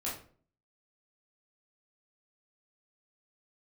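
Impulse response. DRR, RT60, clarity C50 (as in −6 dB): −7.0 dB, 0.45 s, 5.0 dB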